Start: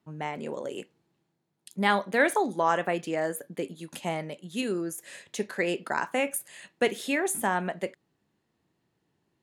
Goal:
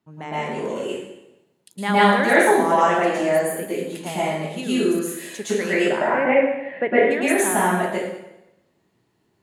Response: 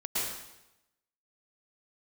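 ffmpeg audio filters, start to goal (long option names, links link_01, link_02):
-filter_complex "[0:a]asplit=3[link_01][link_02][link_03];[link_01]afade=type=out:start_time=5.83:duration=0.02[link_04];[link_02]highpass=130,equalizer=frequency=140:width_type=q:width=4:gain=9,equalizer=frequency=300:width_type=q:width=4:gain=5,equalizer=frequency=590:width_type=q:width=4:gain=10,equalizer=frequency=1300:width_type=q:width=4:gain=-4,equalizer=frequency=2000:width_type=q:width=4:gain=6,lowpass=frequency=2200:width=0.5412,lowpass=frequency=2200:width=1.3066,afade=type=in:start_time=5.83:duration=0.02,afade=type=out:start_time=7.1:duration=0.02[link_05];[link_03]afade=type=in:start_time=7.1:duration=0.02[link_06];[link_04][link_05][link_06]amix=inputs=3:normalize=0[link_07];[1:a]atrim=start_sample=2205[link_08];[link_07][link_08]afir=irnorm=-1:irlink=0,volume=1.5dB"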